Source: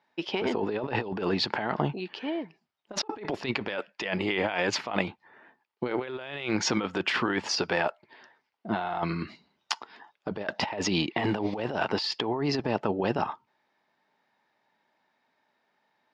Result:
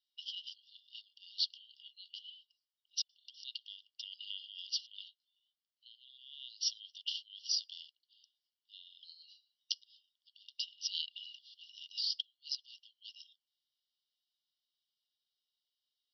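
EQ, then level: brick-wall FIR band-pass 2.8–5.9 kHz; peaking EQ 3.6 kHz -2.5 dB 0.39 oct; -3.0 dB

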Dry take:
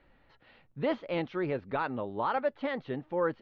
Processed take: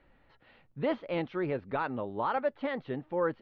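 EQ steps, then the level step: distance through air 93 m; 0.0 dB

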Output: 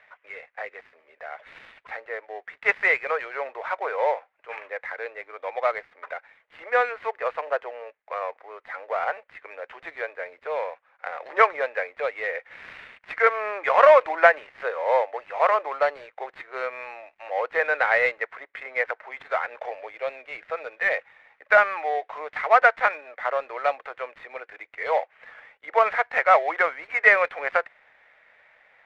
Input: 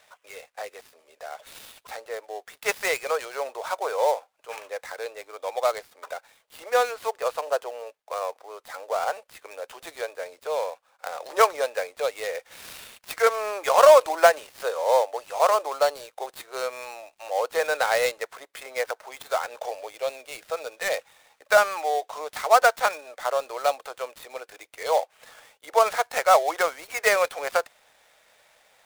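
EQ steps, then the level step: resonant low-pass 2 kHz, resonance Q 3.4; -2.0 dB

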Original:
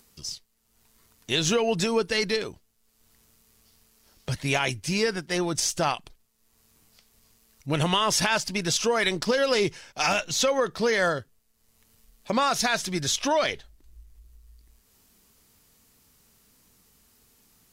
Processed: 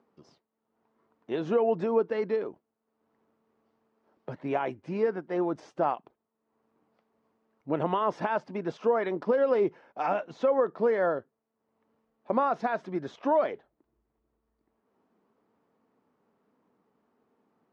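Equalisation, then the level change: Butterworth band-pass 510 Hz, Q 0.6; 0.0 dB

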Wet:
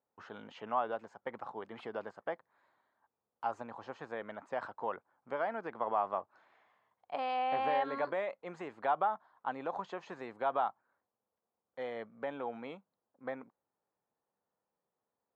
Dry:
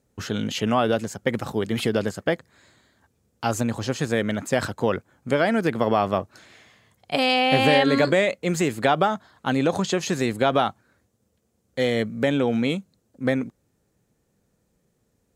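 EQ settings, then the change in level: band-pass filter 940 Hz, Q 2.5; distance through air 69 m; -5.5 dB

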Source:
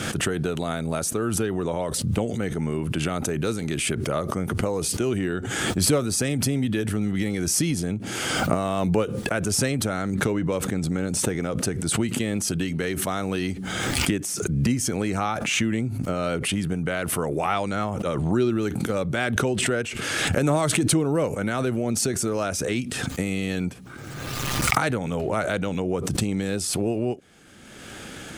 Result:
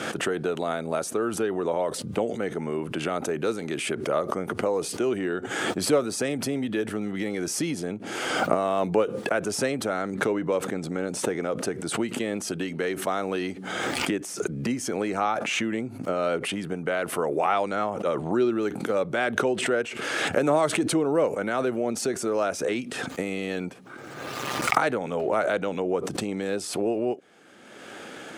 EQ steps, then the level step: high-pass 470 Hz 12 dB/octave; tilt EQ -3 dB/octave; +1.5 dB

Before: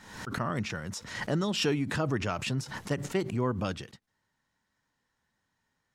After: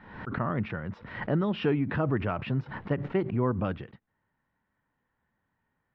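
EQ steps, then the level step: low-pass 2.8 kHz 12 dB/octave; distance through air 370 m; +3.0 dB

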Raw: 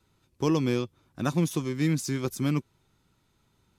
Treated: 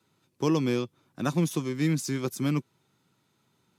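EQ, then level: high-pass 120 Hz 24 dB/octave; 0.0 dB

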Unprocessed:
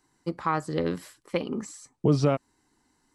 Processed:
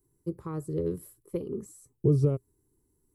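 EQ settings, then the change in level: FFT filter 120 Hz 0 dB, 250 Hz -14 dB, 400 Hz -2 dB, 730 Hz -25 dB, 1.1 kHz -21 dB, 1.7 kHz -28 dB, 2.9 kHz -27 dB, 4.7 kHz -25 dB, 7.1 kHz -16 dB, 12 kHz +3 dB; +4.5 dB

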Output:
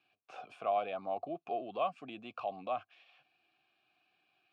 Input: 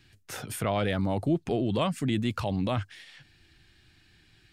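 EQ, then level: vowel filter a; band-pass 150–6100 Hz; +3.0 dB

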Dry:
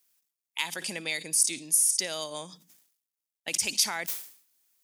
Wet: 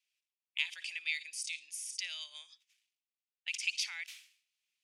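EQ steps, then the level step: ladder band-pass 2.9 kHz, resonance 55%; +4.0 dB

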